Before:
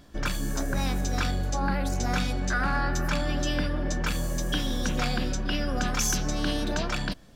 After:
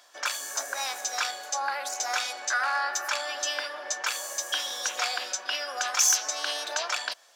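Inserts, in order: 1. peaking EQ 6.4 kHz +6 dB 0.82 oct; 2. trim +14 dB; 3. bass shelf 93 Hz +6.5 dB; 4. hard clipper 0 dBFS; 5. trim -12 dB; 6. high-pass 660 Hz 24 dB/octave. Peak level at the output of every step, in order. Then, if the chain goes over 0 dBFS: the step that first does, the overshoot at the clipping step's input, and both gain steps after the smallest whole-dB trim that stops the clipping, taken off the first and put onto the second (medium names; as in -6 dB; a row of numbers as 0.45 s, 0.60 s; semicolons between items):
-10.5 dBFS, +3.5 dBFS, +4.0 dBFS, 0.0 dBFS, -12.0 dBFS, -10.5 dBFS; step 2, 4.0 dB; step 2 +10 dB, step 5 -8 dB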